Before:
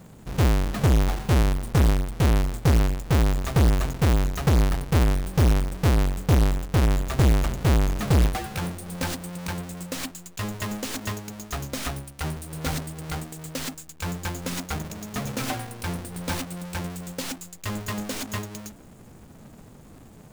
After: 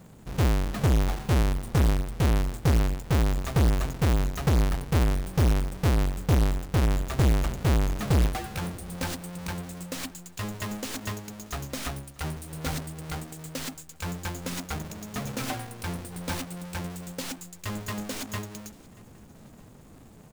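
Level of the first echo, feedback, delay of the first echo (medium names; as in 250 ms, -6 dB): -24.0 dB, 48%, 633 ms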